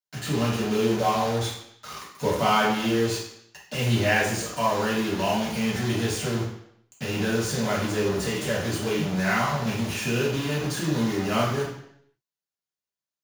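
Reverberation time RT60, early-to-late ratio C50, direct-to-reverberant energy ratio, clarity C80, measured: 0.70 s, 3.5 dB, −6.5 dB, 7.5 dB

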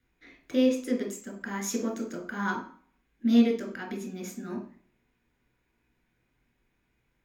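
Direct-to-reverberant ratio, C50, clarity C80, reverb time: 1.0 dB, 8.5 dB, 13.0 dB, 0.45 s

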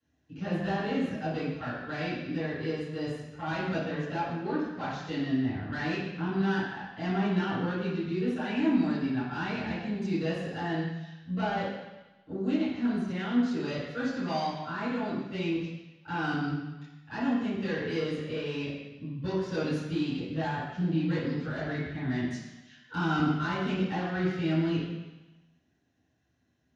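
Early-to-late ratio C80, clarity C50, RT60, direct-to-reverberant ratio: 2.5 dB, −1.0 dB, 1.0 s, −15.5 dB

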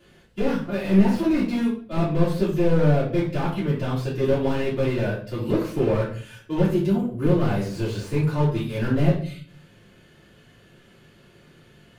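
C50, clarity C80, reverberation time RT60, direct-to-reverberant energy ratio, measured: 6.0 dB, 10.5 dB, 0.50 s, −9.5 dB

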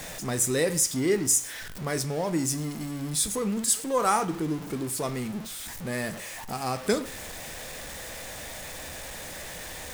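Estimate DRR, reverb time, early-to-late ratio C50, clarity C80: 11.0 dB, 0.50 s, 16.5 dB, 19.5 dB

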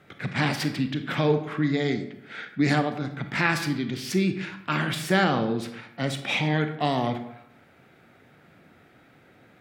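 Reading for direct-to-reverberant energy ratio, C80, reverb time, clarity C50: 7.5 dB, 12.5 dB, 0.80 s, 9.5 dB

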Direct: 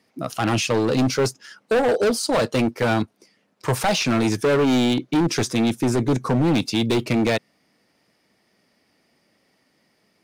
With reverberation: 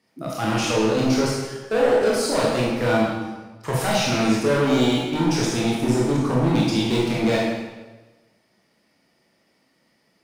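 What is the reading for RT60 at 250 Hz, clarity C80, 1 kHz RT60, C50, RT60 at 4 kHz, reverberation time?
1.2 s, 2.0 dB, 1.2 s, −0.5 dB, 1.0 s, 1.2 s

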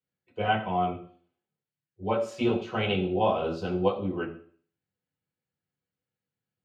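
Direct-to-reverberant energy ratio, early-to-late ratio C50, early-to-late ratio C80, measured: −4.5 dB, 10.5 dB, 13.0 dB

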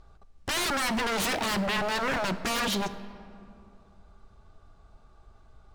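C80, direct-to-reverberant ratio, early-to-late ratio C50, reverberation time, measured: 14.0 dB, 12.0 dB, 13.0 dB, 2.6 s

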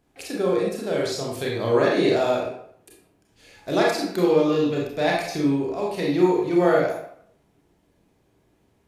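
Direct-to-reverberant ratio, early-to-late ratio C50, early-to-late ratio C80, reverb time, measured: −3.0 dB, 1.5 dB, 5.5 dB, 0.65 s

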